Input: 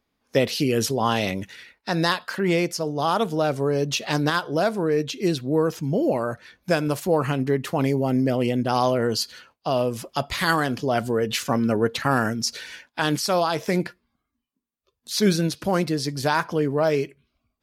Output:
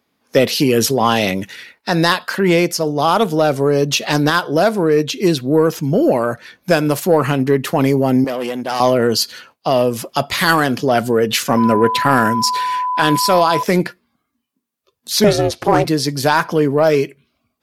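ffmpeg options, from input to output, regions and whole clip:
ffmpeg -i in.wav -filter_complex "[0:a]asettb=1/sr,asplit=3[link_01][link_02][link_03];[link_01]atrim=end=8.244[link_04];[link_02]atrim=start=8.24:end=8.8,asetpts=PTS-STARTPTS,afade=type=in:duration=0.004:curve=qsin,afade=type=out:start_time=0.556:duration=0.004:curve=qsin,highpass=frequency=480:poles=1,aeval=exprs='(tanh(14.1*val(0)+0.4)-tanh(0.4))/14.1':channel_layout=same[link_05];[link_03]atrim=start=8.796[link_06];[link_04][link_05]acrossfade=duration=0.004:curve1=hsin:curve2=qsin[link_07];[link_07][link_06]acrossfade=duration=0.004:curve1=qsin:curve2=hsin,asettb=1/sr,asplit=3[link_08][link_09][link_10];[link_08]atrim=end=11.574[link_11];[link_09]atrim=start=11.57:end=13.63,asetpts=PTS-STARTPTS,afade=type=in:duration=0.004:curve=qsin,afade=type=out:start_time=2.056:duration=0.004:curve=qsin,bandreject=frequency=6200:width=7.3,aeval=exprs='val(0)+0.0562*sin(2*PI*1000*n/s)':channel_layout=same[link_12];[link_10]atrim=start=13.626[link_13];[link_11][link_12]acrossfade=duration=0.004:curve1=hsin:curve2=qsin[link_14];[link_14][link_13]acrossfade=duration=0.004:curve1=qsin:curve2=hsin,asettb=1/sr,asplit=3[link_15][link_16][link_17];[link_15]atrim=end=15.244[link_18];[link_16]atrim=start=15.24:end=15.85,asetpts=PTS-STARTPTS,afade=type=in:duration=0.004:curve=qsin,afade=type=out:start_time=0.606:duration=0.004:curve=qsin,lowpass=10000,equalizer=frequency=590:width_type=o:width=2.4:gain=6.5,aeval=exprs='val(0)*sin(2*PI*210*n/s)':channel_layout=same[link_19];[link_17]atrim=start=15.846[link_20];[link_18][link_19]acrossfade=duration=0.004:curve1=hsin:curve2=qsin[link_21];[link_21][link_20]acrossfade=duration=0.004:curve1=qsin:curve2=hsin,highpass=120,equalizer=frequency=12000:width_type=o:width=0.26:gain=4.5,acontrast=83,volume=1.5dB" out.wav

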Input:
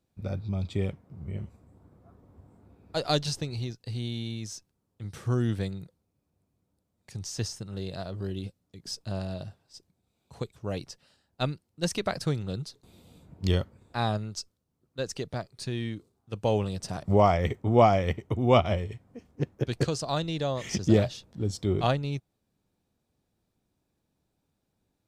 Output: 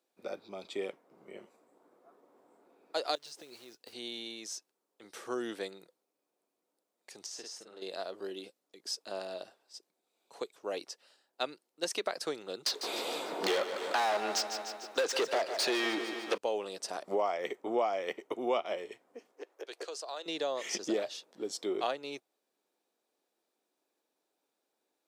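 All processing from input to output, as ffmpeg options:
ffmpeg -i in.wav -filter_complex "[0:a]asettb=1/sr,asplit=3[link_01][link_02][link_03];[link_01]atrim=end=3.154[link_04];[link_02]atrim=start=3.15:end=3.93,asetpts=PTS-STARTPTS,afade=type=in:duration=0.004:curve=qsin,afade=type=out:start_time=0.776:duration=0.004:curve=qsin,acompressor=threshold=-40dB:ratio=20:attack=3.2:release=140:knee=1:detection=peak,lowshelf=frequency=150:gain=7,acrusher=bits=5:mode=log:mix=0:aa=0.000001[link_05];[link_03]atrim=start=3.926[link_06];[link_04][link_05]acrossfade=duration=0.004:curve1=hsin:curve2=qsin[link_07];[link_07][link_06]acrossfade=duration=0.004:curve1=qsin:curve2=hsin,asettb=1/sr,asplit=3[link_08][link_09][link_10];[link_08]atrim=end=7.264[link_11];[link_09]atrim=start=7.26:end=7.82,asetpts=PTS-STARTPTS,afade=type=in:duration=0.004:curve=qsin,afade=type=out:start_time=0.556:duration=0.004:curve=qsin,highshelf=frequency=9200:gain=-10,acompressor=threshold=-43dB:ratio=2.5:attack=3.2:release=140:knee=1:detection=peak,asplit=2[link_12][link_13];[link_13]adelay=48,volume=-3.5dB[link_14];[link_12][link_14]amix=inputs=2:normalize=0,atrim=end_sample=24696[link_15];[link_10]atrim=start=7.816[link_16];[link_11][link_15]acrossfade=duration=0.004:curve1=hsin:curve2=qsin[link_17];[link_17][link_16]acrossfade=duration=0.004:curve1=qsin:curve2=hsin,asettb=1/sr,asplit=3[link_18][link_19][link_20];[link_18]atrim=end=12.664[link_21];[link_19]atrim=start=12.66:end=16.38,asetpts=PTS-STARTPTS,afade=type=in:duration=0.004:curve=qsin,afade=type=out:start_time=3.716:duration=0.004:curve=qsin,asplit=2[link_22][link_23];[link_23]highpass=frequency=720:poles=1,volume=36dB,asoftclip=type=tanh:threshold=-11.5dB[link_24];[link_22][link_24]amix=inputs=2:normalize=0,lowpass=frequency=2600:poles=1,volume=-6dB,aecho=1:1:149|298|447|596|745|894:0.251|0.143|0.0816|0.0465|0.0265|0.0151,atrim=end_sample=164052[link_25];[link_20]atrim=start=16.376[link_26];[link_21][link_25]acrossfade=duration=0.004:curve1=hsin:curve2=qsin[link_27];[link_27][link_26]acrossfade=duration=0.004:curve1=qsin:curve2=hsin,asettb=1/sr,asplit=3[link_28][link_29][link_30];[link_28]atrim=end=19.324[link_31];[link_29]atrim=start=19.32:end=20.26,asetpts=PTS-STARTPTS,afade=type=in:duration=0.004:curve=qsin,afade=type=out:start_time=0.936:duration=0.004:curve=qsin,highpass=frequency=380:width=0.5412,highpass=frequency=380:width=1.3066,acompressor=threshold=-44dB:ratio=2:attack=3.2:release=140:knee=1:detection=peak[link_32];[link_30]atrim=start=20.256[link_33];[link_31][link_32]acrossfade=duration=0.004:curve1=hsin:curve2=qsin[link_34];[link_34][link_33]acrossfade=duration=0.004:curve1=qsin:curve2=hsin,highpass=frequency=350:width=0.5412,highpass=frequency=350:width=1.3066,acompressor=threshold=-30dB:ratio=3" out.wav

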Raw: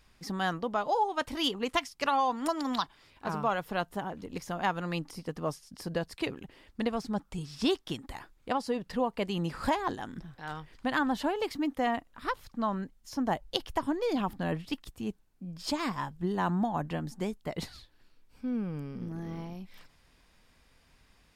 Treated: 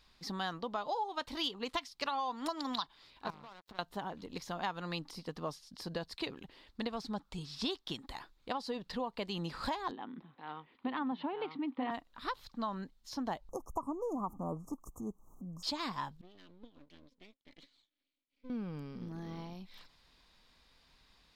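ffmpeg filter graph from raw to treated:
ffmpeg -i in.wav -filter_complex "[0:a]asettb=1/sr,asplit=3[link_01][link_02][link_03];[link_01]atrim=end=3.304[link_04];[link_02]atrim=start=3.3:end=3.79,asetpts=PTS-STARTPTS,afade=type=in:duration=0.004:curve=qsin,afade=type=out:start_time=0.486:duration=0.004:curve=qsin,equalizer=frequency=61:width=0.5:gain=13.5,acompressor=threshold=-40dB:ratio=12:attack=3.2:release=140:knee=1:detection=peak,aeval=exprs='sgn(val(0))*max(abs(val(0))-0.00447,0)':channel_layout=same[link_05];[link_03]atrim=start=3.786[link_06];[link_04][link_05]acrossfade=duration=0.004:curve1=hsin:curve2=qsin[link_07];[link_07][link_06]acrossfade=duration=0.004:curve1=qsin:curve2=hsin,asettb=1/sr,asplit=3[link_08][link_09][link_10];[link_08]atrim=end=9.914[link_11];[link_09]atrim=start=9.91:end=11.91,asetpts=PTS-STARTPTS,afade=type=in:duration=0.004:curve=qsin,afade=type=out:start_time=1.996:duration=0.004:curve=qsin,highpass=230,equalizer=frequency=250:width_type=q:width=4:gain=7,equalizer=frequency=630:width_type=q:width=4:gain=-5,equalizer=frequency=1600:width_type=q:width=4:gain=-9,lowpass=frequency=2700:width=0.5412,lowpass=frequency=2700:width=1.3066,aecho=1:1:936:0.631,atrim=end_sample=88200[link_12];[link_10]atrim=start=11.906[link_13];[link_11][link_12]acrossfade=duration=0.004:curve1=hsin:curve2=qsin[link_14];[link_14][link_13]acrossfade=duration=0.004:curve1=qsin:curve2=hsin,asettb=1/sr,asplit=3[link_15][link_16][link_17];[link_15]atrim=end=13.494[link_18];[link_16]atrim=start=13.49:end=15.63,asetpts=PTS-STARTPTS,afade=type=in:duration=0.004:curve=qsin,afade=type=out:start_time=2.136:duration=0.004:curve=qsin,equalizer=frequency=1200:width_type=o:width=0.22:gain=6,acompressor=mode=upward:threshold=-34dB:ratio=2.5:attack=3.2:release=140:knee=2.83:detection=peak,asuperstop=centerf=2800:order=20:qfactor=0.58[link_19];[link_17]atrim=start=15.626[link_20];[link_18][link_19]acrossfade=duration=0.004:curve1=hsin:curve2=qsin[link_21];[link_21][link_20]acrossfade=duration=0.004:curve1=qsin:curve2=hsin,asettb=1/sr,asplit=3[link_22][link_23][link_24];[link_22]atrim=end=16.214[link_25];[link_23]atrim=start=16.21:end=18.5,asetpts=PTS-STARTPTS,afade=type=in:duration=0.004:curve=qsin,afade=type=out:start_time=2.286:duration=0.004:curve=qsin,asplit=3[link_26][link_27][link_28];[link_26]bandpass=frequency=270:width_type=q:width=8,volume=0dB[link_29];[link_27]bandpass=frequency=2290:width_type=q:width=8,volume=-6dB[link_30];[link_28]bandpass=frequency=3010:width_type=q:width=8,volume=-9dB[link_31];[link_29][link_30][link_31]amix=inputs=3:normalize=0,equalizer=frequency=200:width_type=o:width=0.66:gain=-9,aeval=exprs='max(val(0),0)':channel_layout=same[link_32];[link_24]atrim=start=18.496[link_33];[link_25][link_32]acrossfade=duration=0.004:curve1=hsin:curve2=qsin[link_34];[link_34][link_33]acrossfade=duration=0.004:curve1=qsin:curve2=hsin,equalizer=frequency=100:width_type=o:width=0.67:gain=-5,equalizer=frequency=1000:width_type=o:width=0.67:gain=4,equalizer=frequency=4000:width_type=o:width=0.67:gain=11,equalizer=frequency=10000:width_type=o:width=0.67:gain=-4,acompressor=threshold=-29dB:ratio=3,volume=-5dB" out.wav

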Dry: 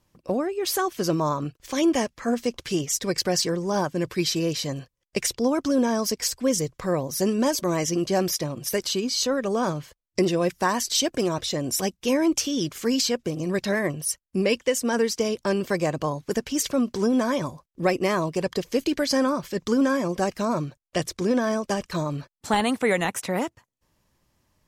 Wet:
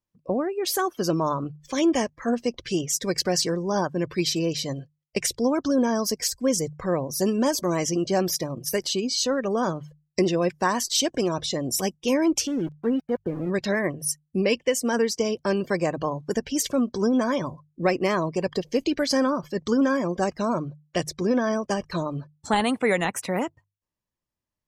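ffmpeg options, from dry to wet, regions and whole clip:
ffmpeg -i in.wav -filter_complex "[0:a]asettb=1/sr,asplit=3[link_01][link_02][link_03];[link_01]atrim=end=12.474[link_04];[link_02]atrim=start=12.47:end=13.5,asetpts=PTS-STARTPTS,afade=type=in:duration=0.004:curve=qsin,afade=type=out:start_time=1.026:duration=0.004:curve=qsin,lowpass=1300,aeval=exprs='val(0)*gte(abs(val(0)),0.0188)':channel_layout=same[link_05];[link_03]atrim=start=13.496[link_06];[link_04][link_05]acrossfade=duration=0.004:curve1=hsin:curve2=qsin[link_07];[link_07][link_06]acrossfade=duration=0.004:curve1=qsin:curve2=hsin,afftdn=noise_reduction=21:noise_floor=-42,bandreject=frequency=50:width_type=h:width=6,bandreject=frequency=100:width_type=h:width=6,bandreject=frequency=150:width_type=h:width=6" out.wav

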